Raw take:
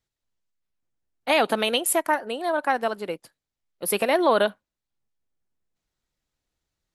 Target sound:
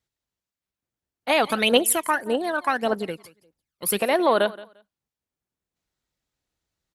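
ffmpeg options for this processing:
-filter_complex "[0:a]highpass=42,aecho=1:1:174|348:0.106|0.0191,asplit=3[s0][s1][s2];[s0]afade=t=out:st=1.42:d=0.02[s3];[s1]aphaser=in_gain=1:out_gain=1:delay=1:decay=0.68:speed=1.7:type=triangular,afade=t=in:st=1.42:d=0.02,afade=t=out:st=3.98:d=0.02[s4];[s2]afade=t=in:st=3.98:d=0.02[s5];[s3][s4][s5]amix=inputs=3:normalize=0"

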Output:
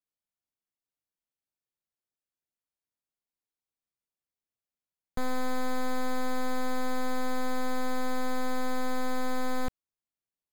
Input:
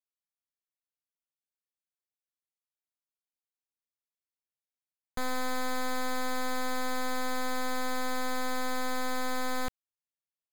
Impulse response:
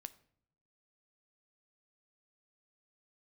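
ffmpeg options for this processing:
-af "tiltshelf=f=810:g=4.5"

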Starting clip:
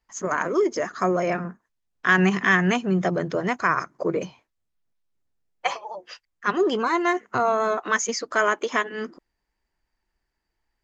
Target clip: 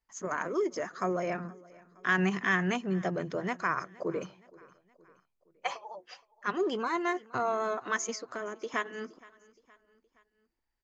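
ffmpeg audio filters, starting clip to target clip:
-filter_complex "[0:a]asettb=1/sr,asplit=3[s0][s1][s2];[s0]atrim=end=8.154[s3];[s1]atrim=start=8.15:end=8.74,asetpts=PTS-STARTPTS,afade=t=in:d=0.004:c=qsin,afade=t=out:st=0.586:d=0.004:c=qsin,acrossover=split=460[s4][s5];[s5]acompressor=threshold=0.0282:ratio=10[s6];[s4][s6]amix=inputs=2:normalize=0[s7];[s2]atrim=start=8.736[s8];[s3][s7]acrossfade=d=0.004:c1=hsin:c2=qsin[s9];[s9][s8]acrossfade=d=0.004:c1=qsin:c2=hsin,aecho=1:1:469|938|1407:0.0708|0.0361|0.0184,volume=0.376"

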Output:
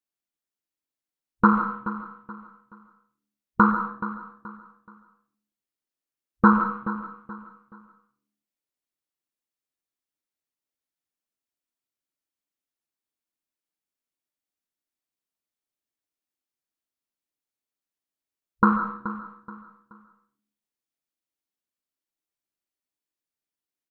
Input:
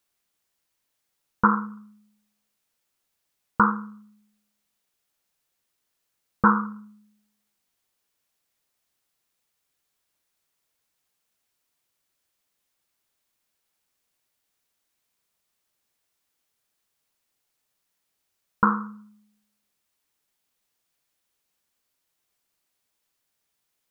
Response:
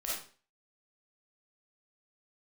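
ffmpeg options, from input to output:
-filter_complex "[0:a]afwtdn=0.0126,equalizer=f=290:w=1.6:g=8.5,aecho=1:1:427|854|1281:0.211|0.0697|0.023,asplit=2[s0][s1];[1:a]atrim=start_sample=2205,adelay=94[s2];[s1][s2]afir=irnorm=-1:irlink=0,volume=0.299[s3];[s0][s3]amix=inputs=2:normalize=0"

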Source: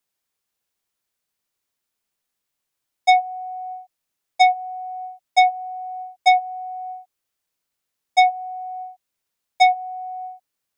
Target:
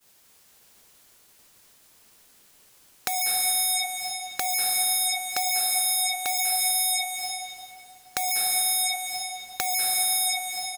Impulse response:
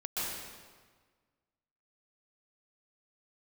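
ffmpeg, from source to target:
-filter_complex "[0:a]alimiter=limit=0.119:level=0:latency=1:release=33,tiltshelf=f=1500:g=5,asoftclip=type=tanh:threshold=0.0316,asplit=2[s0][s1];[s1]adelay=110,highpass=300,lowpass=3400,asoftclip=type=hard:threshold=0.0126,volume=0.126[s2];[s0][s2]amix=inputs=2:normalize=0,aeval=exprs='0.0335*sin(PI/2*7.08*val(0)/0.0335)':c=same,acontrast=36,agate=range=0.0224:threshold=0.00501:ratio=3:detection=peak,acompressor=threshold=0.0112:ratio=10,highshelf=f=2500:g=11,asplit=2[s3][s4];[1:a]atrim=start_sample=2205,asetrate=27342,aresample=44100[s5];[s4][s5]afir=irnorm=-1:irlink=0,volume=0.355[s6];[s3][s6]amix=inputs=2:normalize=0,volume=1.78"

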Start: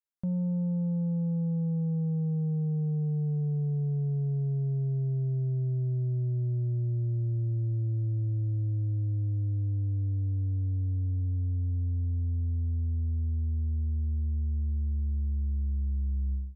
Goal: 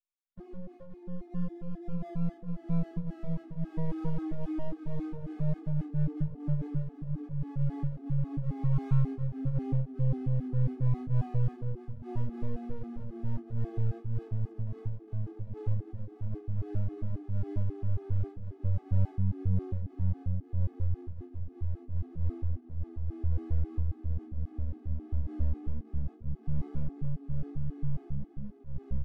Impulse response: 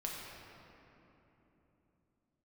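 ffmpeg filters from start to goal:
-filter_complex "[0:a]asplit=6[s0][s1][s2][s3][s4][s5];[s1]adelay=409,afreqshift=-47,volume=0.0794[s6];[s2]adelay=818,afreqshift=-94,volume=0.0501[s7];[s3]adelay=1227,afreqshift=-141,volume=0.0316[s8];[s4]adelay=1636,afreqshift=-188,volume=0.02[s9];[s5]adelay=2045,afreqshift=-235,volume=0.0124[s10];[s0][s6][s7][s8][s9][s10]amix=inputs=6:normalize=0,atempo=0.57,dynaudnorm=f=340:g=21:m=1.78[s11];[1:a]atrim=start_sample=2205[s12];[s11][s12]afir=irnorm=-1:irlink=0,aeval=exprs='max(val(0),0)':c=same,flanger=delay=6.9:depth=2.4:regen=-72:speed=1.4:shape=triangular,asplit=2[s13][s14];[s14]aeval=exprs='0.0708*(abs(mod(val(0)/0.0708+3,4)-2)-1)':c=same,volume=0.596[s15];[s13][s15]amix=inputs=2:normalize=0,flanger=delay=20:depth=3:speed=0.14,afftfilt=real='re*gt(sin(2*PI*3.7*pts/sr)*(1-2*mod(floor(b*sr/1024/220),2)),0)':imag='im*gt(sin(2*PI*3.7*pts/sr)*(1-2*mod(floor(b*sr/1024/220),2)),0)':win_size=1024:overlap=0.75"

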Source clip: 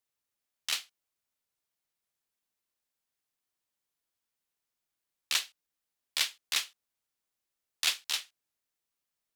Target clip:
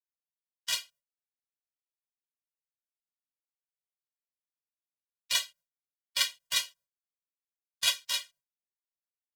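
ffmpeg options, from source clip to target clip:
-af "agate=range=0.0224:threshold=0.002:ratio=3:detection=peak,aecho=1:1:7.1:0.73,afftfilt=real='re*eq(mod(floor(b*sr/1024/230),2),0)':imag='im*eq(mod(floor(b*sr/1024/230),2),0)':win_size=1024:overlap=0.75,volume=1.41"

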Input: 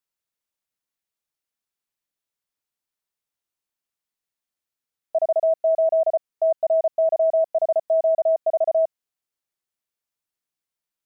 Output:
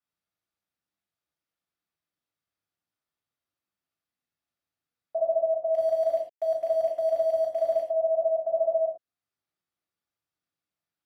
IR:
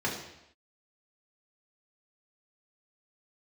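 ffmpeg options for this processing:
-filter_complex "[0:a]alimiter=limit=0.0841:level=0:latency=1:release=407,asettb=1/sr,asplit=3[s0][s1][s2];[s0]atrim=end=5.744[s3];[s1]atrim=start=5.74:end=7.82,asetpts=PTS-STARTPTS,afade=t=in:d=0.004:c=qsin,afade=t=out:st=2.076:d=0.004:c=qsin,aeval=exprs='val(0)*gte(abs(val(0)),0.0126)':c=same[s4];[s2]atrim=start=7.816[s5];[s3][s4]acrossfade=d=0.004:c1=hsin:c2=qsin[s6];[s6][s5]acrossfade=d=0.004:c1=qsin:c2=hsin[s7];[1:a]atrim=start_sample=2205,atrim=end_sample=3969,asetrate=32634,aresample=44100[s8];[s7][s8]afir=irnorm=-1:irlink=0,volume=0.355"

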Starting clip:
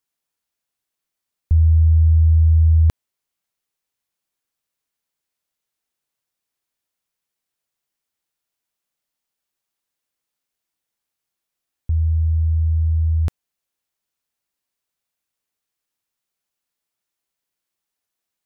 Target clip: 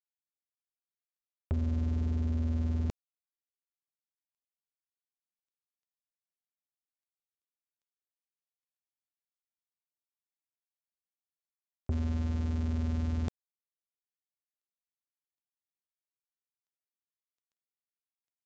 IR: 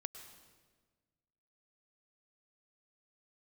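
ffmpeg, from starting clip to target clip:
-af "aeval=exprs='val(0)+0.5*0.015*sgn(val(0))':c=same,highpass=f=210:p=1,acompressor=threshold=0.0355:ratio=16,aeval=exprs='val(0)+0.00447*(sin(2*PI*60*n/s)+sin(2*PI*2*60*n/s)/2+sin(2*PI*3*60*n/s)/3+sin(2*PI*4*60*n/s)/4+sin(2*PI*5*60*n/s)/5)':c=same,aresample=16000,acrusher=bits=4:mix=0:aa=0.5,aresample=44100"

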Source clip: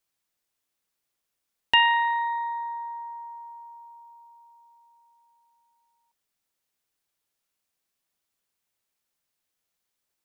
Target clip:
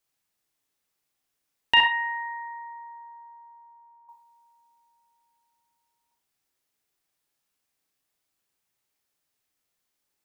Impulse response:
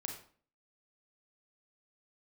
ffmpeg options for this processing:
-filter_complex "[0:a]asettb=1/sr,asplit=3[s0][s1][s2];[s0]atrim=end=1.804[s3];[s1]atrim=start=1.8:end=4.09,asetpts=PTS-STARTPTS,afade=t=in:d=0.004:c=qsin,afade=t=out:st=2.286:d=0.004:c=qsin,lowpass=f=1800:w=0.5412,lowpass=f=1800:w=1.3066[s4];[s2]atrim=start=4.086[s5];[s3][s4]acrossfade=d=0.004:c1=hsin:c2=qsin[s6];[s6][s5]acrossfade=d=0.004:c1=qsin:c2=hsin[s7];[1:a]atrim=start_sample=2205,atrim=end_sample=6174[s8];[s7][s8]afir=irnorm=-1:irlink=0,volume=1.41"

